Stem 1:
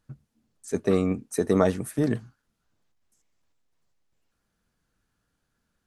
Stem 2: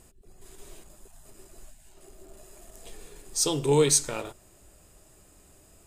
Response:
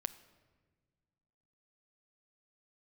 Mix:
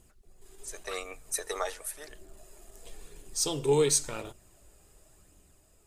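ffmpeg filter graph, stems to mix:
-filter_complex "[0:a]highpass=frequency=580:width=0.5412,highpass=frequency=580:width=1.3066,highshelf=frequency=2100:gain=10.5,volume=-4dB,afade=type=out:start_time=1.69:duration=0.48:silence=0.251189,asplit=2[link_01][link_02];[link_02]volume=-10.5dB[link_03];[1:a]volume=-3dB,asplit=2[link_04][link_05];[link_05]apad=whole_len=258836[link_06];[link_01][link_06]sidechaincompress=threshold=-52dB:ratio=8:attack=5.3:release=117[link_07];[2:a]atrim=start_sample=2205[link_08];[link_03][link_08]afir=irnorm=-1:irlink=0[link_09];[link_07][link_04][link_09]amix=inputs=3:normalize=0,dynaudnorm=framelen=140:gausssize=9:maxgain=3.5dB,flanger=delay=0.3:depth=2.2:regen=60:speed=0.93:shape=sinusoidal"

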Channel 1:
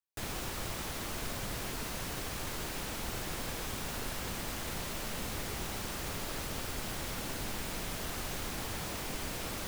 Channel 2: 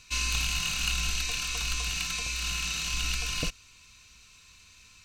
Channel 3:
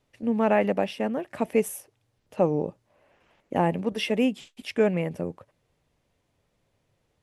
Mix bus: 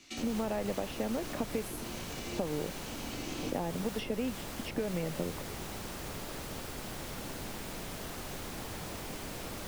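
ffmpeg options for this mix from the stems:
ffmpeg -i stem1.wav -i stem2.wav -i stem3.wav -filter_complex "[0:a]volume=-0.5dB[link_01];[1:a]alimiter=limit=-21dB:level=0:latency=1,aeval=exprs='val(0)*sin(2*PI*290*n/s)':channel_layout=same,flanger=delay=18.5:depth=5.1:speed=0.34,volume=2dB[link_02];[2:a]acompressor=threshold=-28dB:ratio=6,volume=1.5dB,asplit=2[link_03][link_04];[link_04]apad=whole_len=222497[link_05];[link_02][link_05]sidechaincompress=threshold=-38dB:ratio=8:attack=16:release=809[link_06];[link_01][link_06][link_03]amix=inputs=3:normalize=0,acrossover=split=110|870[link_07][link_08][link_09];[link_07]acompressor=threshold=-45dB:ratio=4[link_10];[link_08]acompressor=threshold=-31dB:ratio=4[link_11];[link_09]acompressor=threshold=-43dB:ratio=4[link_12];[link_10][link_11][link_12]amix=inputs=3:normalize=0" out.wav

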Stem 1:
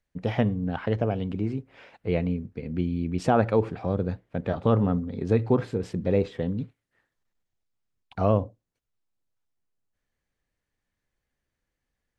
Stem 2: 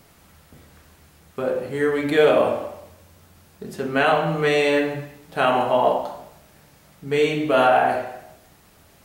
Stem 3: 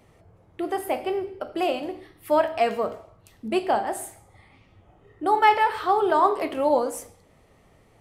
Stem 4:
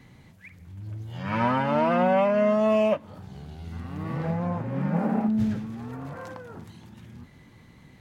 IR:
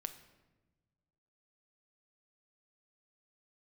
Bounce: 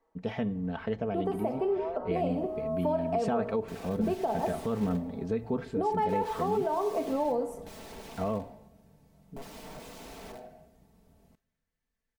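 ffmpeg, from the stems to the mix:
-filter_complex "[0:a]volume=-8dB,asplit=3[link_01][link_02][link_03];[link_02]volume=-11dB[link_04];[1:a]acompressor=threshold=-19dB:ratio=10,bass=frequency=250:gain=5,treble=frequency=4000:gain=3,aeval=exprs='(mod(17.8*val(0)+1,2)-1)/17.8':channel_layout=same,adelay=2300,volume=-11.5dB,asplit=2[link_05][link_06];[link_06]volume=-9dB[link_07];[2:a]adelay=550,volume=1dB,asplit=2[link_08][link_09];[link_09]volume=-17dB[link_10];[3:a]highpass=frequency=430:width=0.5412,highpass=frequency=430:width=1.3066,aecho=1:1:6.2:0.65,volume=-12dB[link_11];[link_03]apad=whole_len=353432[link_12];[link_11][link_12]sidechaincompress=threshold=-41dB:ratio=8:attack=16:release=667[link_13];[link_05][link_08][link_13]amix=inputs=3:normalize=0,lowpass=frequency=1100:width=0.5412,lowpass=frequency=1100:width=1.3066,acompressor=threshold=-27dB:ratio=3,volume=0dB[link_14];[4:a]atrim=start_sample=2205[link_15];[link_04][link_07][link_10]amix=inputs=3:normalize=0[link_16];[link_16][link_15]afir=irnorm=-1:irlink=0[link_17];[link_01][link_14][link_17]amix=inputs=3:normalize=0,aecho=1:1:4.5:0.54,alimiter=limit=-20dB:level=0:latency=1:release=107"

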